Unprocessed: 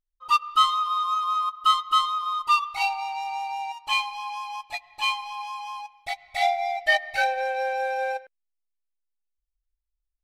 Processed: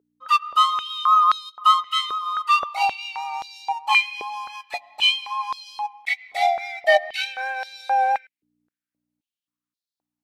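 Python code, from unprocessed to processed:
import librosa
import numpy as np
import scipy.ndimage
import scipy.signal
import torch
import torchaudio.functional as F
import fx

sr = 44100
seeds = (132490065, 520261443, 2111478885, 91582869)

y = fx.vibrato(x, sr, rate_hz=4.7, depth_cents=21.0)
y = fx.add_hum(y, sr, base_hz=60, snr_db=33)
y = fx.filter_held_highpass(y, sr, hz=3.8, low_hz=420.0, high_hz=4100.0)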